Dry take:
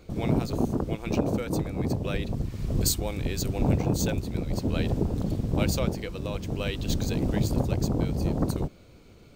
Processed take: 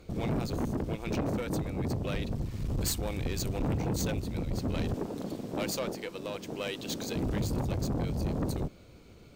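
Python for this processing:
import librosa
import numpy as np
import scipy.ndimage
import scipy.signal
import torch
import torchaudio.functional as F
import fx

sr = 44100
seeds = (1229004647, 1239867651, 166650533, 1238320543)

y = fx.highpass(x, sr, hz=270.0, slope=12, at=(4.94, 7.16))
y = fx.tube_stage(y, sr, drive_db=26.0, bias=0.35)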